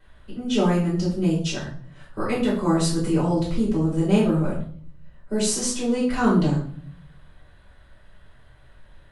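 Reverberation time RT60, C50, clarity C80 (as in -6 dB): 0.50 s, 5.0 dB, 9.5 dB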